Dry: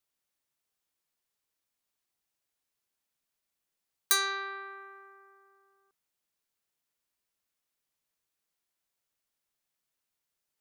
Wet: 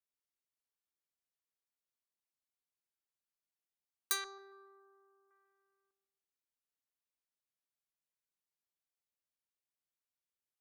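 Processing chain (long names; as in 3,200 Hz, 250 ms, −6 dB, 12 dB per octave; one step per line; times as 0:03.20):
0:04.24–0:05.31: Butterworth band-reject 2,400 Hz, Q 0.56
delay with a low-pass on its return 138 ms, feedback 39%, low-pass 1,100 Hz, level −10 dB
harmonic generator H 3 −12 dB, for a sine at −11.5 dBFS
soft clipping −20 dBFS, distortion −11 dB
level −1 dB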